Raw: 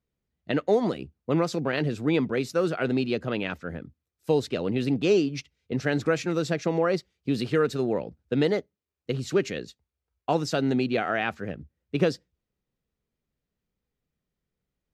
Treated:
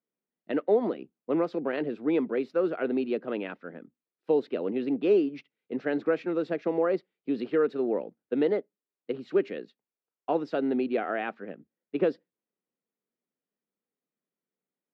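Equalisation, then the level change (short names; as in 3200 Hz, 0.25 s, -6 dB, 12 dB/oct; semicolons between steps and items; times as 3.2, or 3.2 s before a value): HPF 220 Hz 24 dB/oct; dynamic EQ 420 Hz, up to +4 dB, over -32 dBFS, Q 0.86; air absorption 390 m; -3.5 dB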